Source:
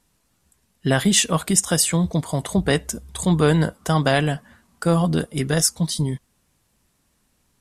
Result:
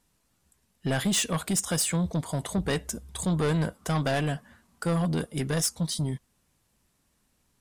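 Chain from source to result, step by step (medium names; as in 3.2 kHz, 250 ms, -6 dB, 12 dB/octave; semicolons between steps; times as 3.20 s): saturation -16 dBFS, distortion -12 dB; trim -4.5 dB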